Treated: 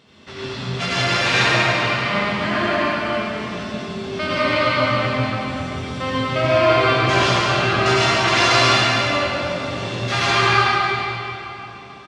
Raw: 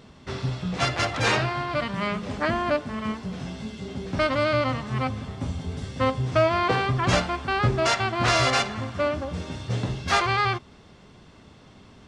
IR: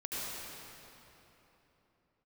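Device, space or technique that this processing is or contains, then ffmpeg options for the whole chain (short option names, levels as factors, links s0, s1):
PA in a hall: -filter_complex "[0:a]highpass=f=140:p=1,equalizer=f=3000:t=o:w=1.7:g=7,aecho=1:1:144:0.473[s0];[1:a]atrim=start_sample=2205[s1];[s0][s1]afir=irnorm=-1:irlink=0"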